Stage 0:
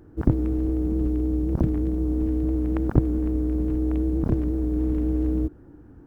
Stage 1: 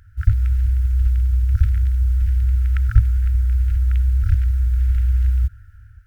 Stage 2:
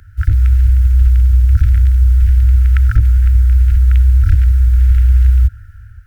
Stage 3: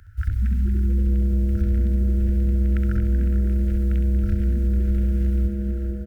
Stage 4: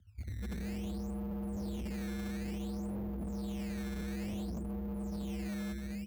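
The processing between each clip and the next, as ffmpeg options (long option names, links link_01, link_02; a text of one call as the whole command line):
ffmpeg -i in.wav -af "afftfilt=real='re*(1-between(b*sr/4096,110,1300))':imag='im*(1-between(b*sr/4096,110,1300))':win_size=4096:overlap=0.75,dynaudnorm=framelen=100:gausssize=7:maxgain=4dB,volume=6dB" out.wav
ffmpeg -i in.wav -filter_complex "[0:a]acrossover=split=110|750[link_01][link_02][link_03];[link_02]asoftclip=type=tanh:threshold=-25.5dB[link_04];[link_01][link_04][link_03]amix=inputs=3:normalize=0,alimiter=level_in=9dB:limit=-1dB:release=50:level=0:latency=1,volume=-1dB" out.wav
ffmpeg -i in.wav -filter_complex "[0:a]asplit=2[link_01][link_02];[link_02]aecho=0:1:67|444|559:0.447|0.224|0.178[link_03];[link_01][link_03]amix=inputs=2:normalize=0,acompressor=threshold=-14dB:ratio=2.5,asplit=2[link_04][link_05];[link_05]asplit=4[link_06][link_07][link_08][link_09];[link_06]adelay=233,afreqshift=140,volume=-10.5dB[link_10];[link_07]adelay=466,afreqshift=280,volume=-18.7dB[link_11];[link_08]adelay=699,afreqshift=420,volume=-26.9dB[link_12];[link_09]adelay=932,afreqshift=560,volume=-35dB[link_13];[link_10][link_11][link_12][link_13]amix=inputs=4:normalize=0[link_14];[link_04][link_14]amix=inputs=2:normalize=0,volume=-7dB" out.wav
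ffmpeg -i in.wav -af "bandpass=frequency=180:width_type=q:width=2.1:csg=0,acrusher=samples=13:mix=1:aa=0.000001:lfo=1:lforange=20.8:lforate=0.57,asoftclip=type=hard:threshold=-33.5dB,volume=-3dB" out.wav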